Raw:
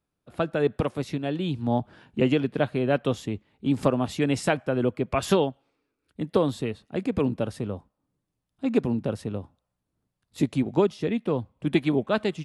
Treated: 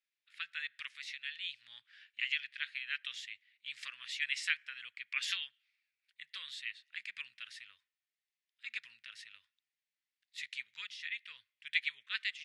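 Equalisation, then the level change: elliptic high-pass 1900 Hz, stop band 60 dB; tape spacing loss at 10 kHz 21 dB; +7.0 dB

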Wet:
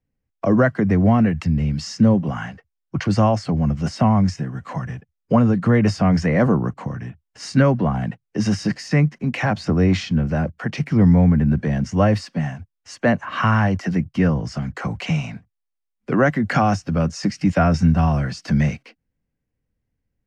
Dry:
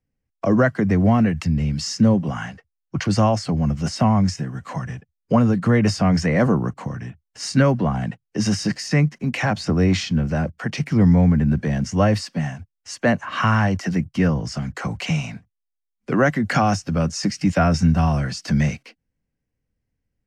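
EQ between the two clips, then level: high shelf 4700 Hz -10 dB; +1.0 dB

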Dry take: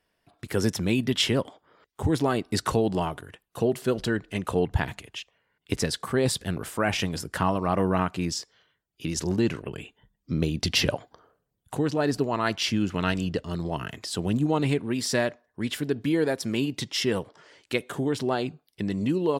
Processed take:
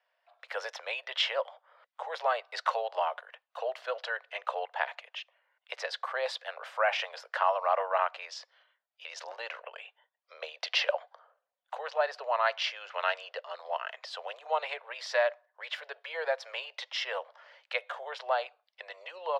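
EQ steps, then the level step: steep high-pass 530 Hz 72 dB/oct; air absorption 250 m; +1.5 dB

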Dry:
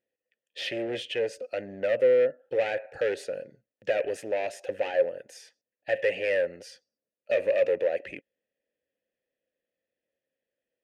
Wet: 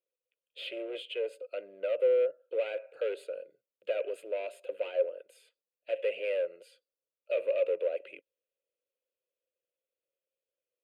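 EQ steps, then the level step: HPF 230 Hz 24 dB/oct; dynamic EQ 930 Hz, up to +3 dB, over -38 dBFS, Q 1.1; fixed phaser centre 1200 Hz, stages 8; -5.5 dB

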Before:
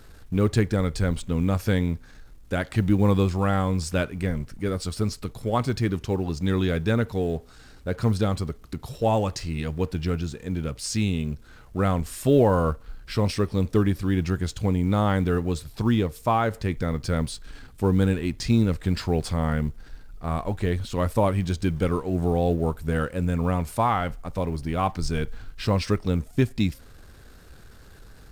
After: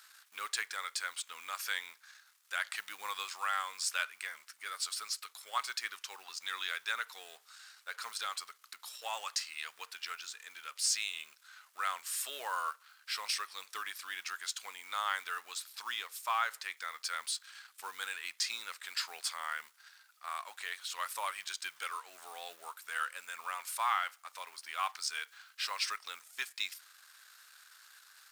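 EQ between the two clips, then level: resonant high-pass 1200 Hz, resonance Q 1.7; differentiator; high shelf 7000 Hz -11.5 dB; +7.0 dB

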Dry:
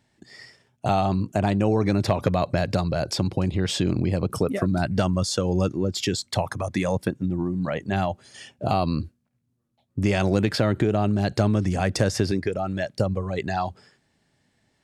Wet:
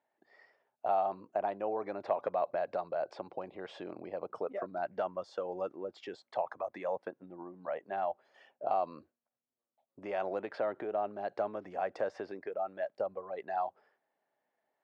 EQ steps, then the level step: ladder band-pass 810 Hz, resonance 30%; +2.5 dB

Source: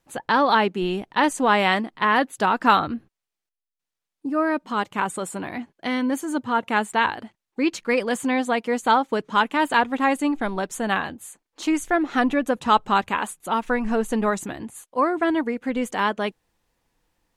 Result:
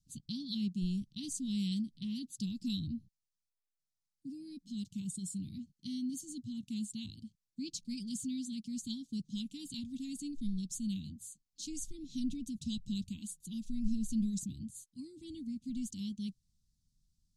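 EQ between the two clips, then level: inverse Chebyshev band-stop 500–1800 Hz, stop band 60 dB; air absorption 51 m; -1.5 dB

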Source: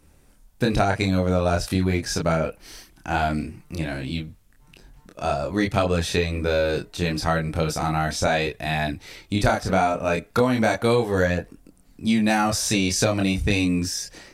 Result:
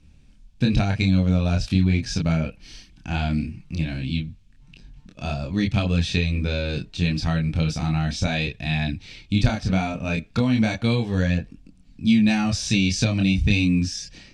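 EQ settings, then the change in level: air absorption 130 m; band shelf 730 Hz -13 dB 2.6 oct; notch 2000 Hz, Q 8.7; +4.5 dB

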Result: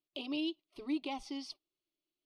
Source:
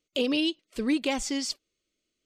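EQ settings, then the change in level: running mean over 6 samples; low shelf 200 Hz -8.5 dB; fixed phaser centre 330 Hz, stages 8; -5.5 dB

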